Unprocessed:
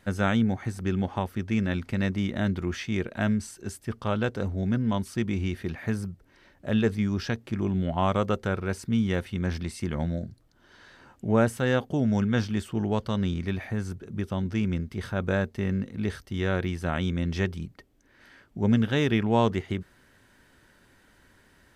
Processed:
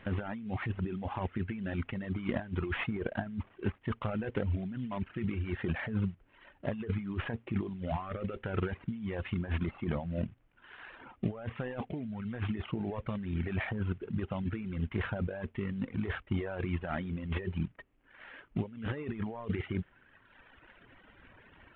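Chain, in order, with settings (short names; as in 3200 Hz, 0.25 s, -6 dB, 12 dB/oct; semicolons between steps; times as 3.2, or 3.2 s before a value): CVSD 16 kbps; negative-ratio compressor -32 dBFS, ratio -1; reverb removal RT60 1.9 s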